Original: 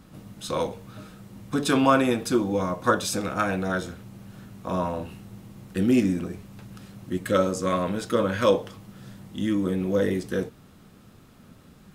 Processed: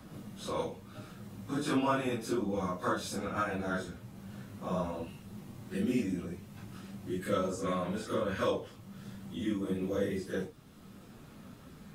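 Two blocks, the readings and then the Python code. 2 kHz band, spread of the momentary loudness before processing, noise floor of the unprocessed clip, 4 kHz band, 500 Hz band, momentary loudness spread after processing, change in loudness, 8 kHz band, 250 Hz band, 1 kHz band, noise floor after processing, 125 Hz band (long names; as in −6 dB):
−9.0 dB, 23 LU, −52 dBFS, −9.5 dB, −9.5 dB, 17 LU, −9.5 dB, −10.5 dB, −9.0 dB, −9.0 dB, −53 dBFS, −8.0 dB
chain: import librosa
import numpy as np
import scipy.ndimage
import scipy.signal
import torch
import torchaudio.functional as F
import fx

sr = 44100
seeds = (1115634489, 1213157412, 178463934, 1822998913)

y = fx.phase_scramble(x, sr, seeds[0], window_ms=100)
y = fx.band_squash(y, sr, depth_pct=40)
y = y * 10.0 ** (-8.5 / 20.0)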